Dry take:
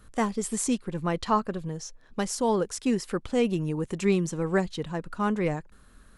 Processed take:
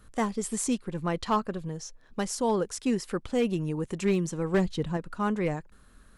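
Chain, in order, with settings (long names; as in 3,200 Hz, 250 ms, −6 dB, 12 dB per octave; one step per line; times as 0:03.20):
0:04.54–0:04.97: low-shelf EQ 440 Hz +6.5 dB
gain into a clipping stage and back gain 16.5 dB
level −1.5 dB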